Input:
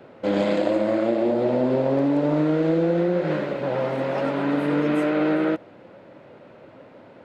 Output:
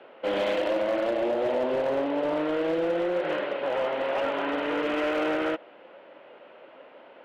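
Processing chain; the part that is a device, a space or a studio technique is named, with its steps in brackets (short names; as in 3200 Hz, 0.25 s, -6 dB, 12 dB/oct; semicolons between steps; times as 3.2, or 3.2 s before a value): megaphone (BPF 480–2900 Hz; bell 3000 Hz +9 dB 0.43 oct; hard clip -21 dBFS, distortion -17 dB)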